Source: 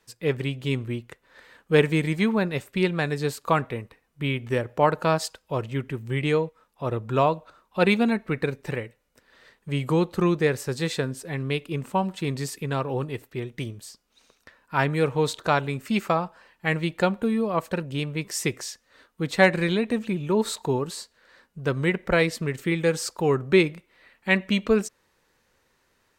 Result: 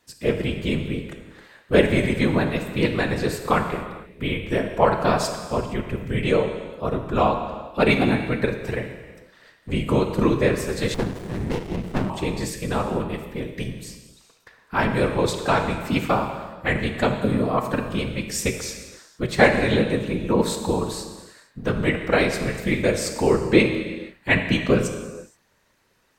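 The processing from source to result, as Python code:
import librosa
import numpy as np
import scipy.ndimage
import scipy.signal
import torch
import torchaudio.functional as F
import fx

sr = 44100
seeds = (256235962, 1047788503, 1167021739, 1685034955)

y = fx.whisperise(x, sr, seeds[0])
y = fx.rev_gated(y, sr, seeds[1], gate_ms=500, shape='falling', drr_db=5.0)
y = fx.running_max(y, sr, window=33, at=(10.94, 12.1))
y = F.gain(torch.from_numpy(y), 1.5).numpy()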